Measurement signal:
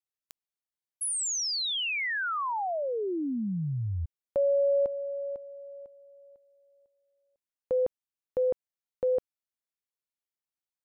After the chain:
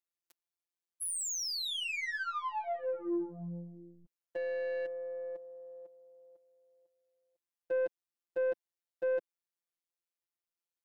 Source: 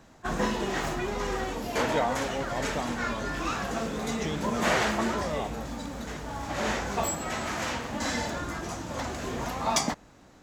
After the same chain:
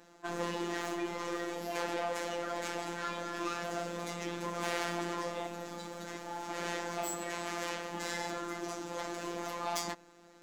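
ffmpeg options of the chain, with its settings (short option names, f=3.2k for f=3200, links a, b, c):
-af "aeval=exprs='(tanh(28.2*val(0)+0.15)-tanh(0.15))/28.2':c=same,lowshelf=f=190:t=q:w=1.5:g=-11.5,afftfilt=real='hypot(re,im)*cos(PI*b)':imag='0':win_size=1024:overlap=0.75"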